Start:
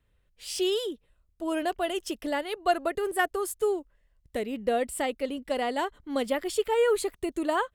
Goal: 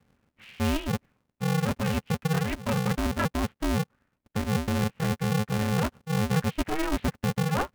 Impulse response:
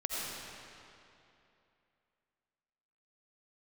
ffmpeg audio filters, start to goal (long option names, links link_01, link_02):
-af "lowshelf=frequency=360:width_type=q:width=3:gain=12.5,areverse,acompressor=threshold=-28dB:ratio=6,areverse,highpass=frequency=230:width_type=q:width=0.5412,highpass=frequency=230:width_type=q:width=1.307,lowpass=frequency=2900:width_type=q:width=0.5176,lowpass=frequency=2900:width_type=q:width=0.7071,lowpass=frequency=2900:width_type=q:width=1.932,afreqshift=-300,aeval=exprs='val(0)*sgn(sin(2*PI*160*n/s))':channel_layout=same,volume=4.5dB"